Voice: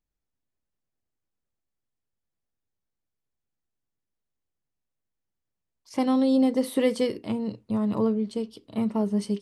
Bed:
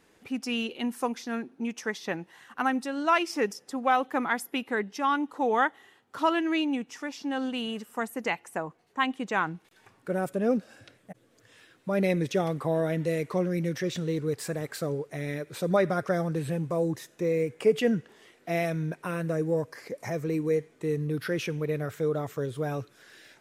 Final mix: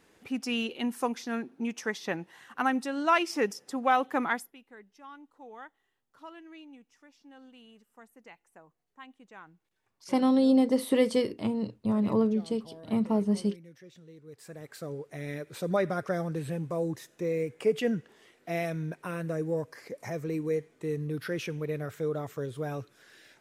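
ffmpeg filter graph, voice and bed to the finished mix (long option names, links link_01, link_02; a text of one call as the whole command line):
ffmpeg -i stem1.wav -i stem2.wav -filter_complex "[0:a]adelay=4150,volume=-1dB[link_01];[1:a]volume=18dB,afade=type=out:start_time=4.29:duration=0.24:silence=0.0841395,afade=type=in:start_time=14.24:duration=1.1:silence=0.11885[link_02];[link_01][link_02]amix=inputs=2:normalize=0" out.wav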